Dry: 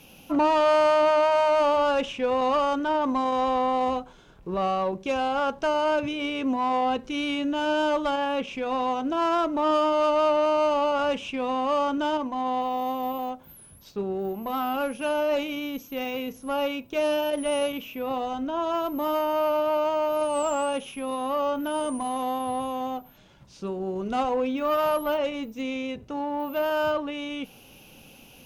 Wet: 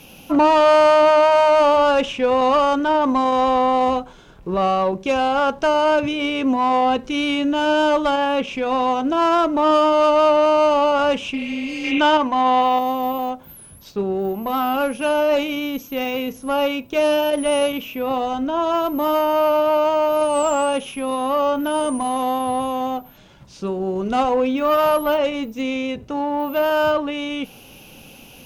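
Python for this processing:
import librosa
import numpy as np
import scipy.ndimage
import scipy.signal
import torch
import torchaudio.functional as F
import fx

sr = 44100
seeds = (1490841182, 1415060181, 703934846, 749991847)

y = fx.spec_repair(x, sr, seeds[0], start_s=11.37, length_s=0.6, low_hz=460.0, high_hz=4000.0, source='before')
y = fx.peak_eq(y, sr, hz=2000.0, db=8.0, octaves=2.7, at=(11.84, 12.79))
y = F.gain(torch.from_numpy(y), 7.0).numpy()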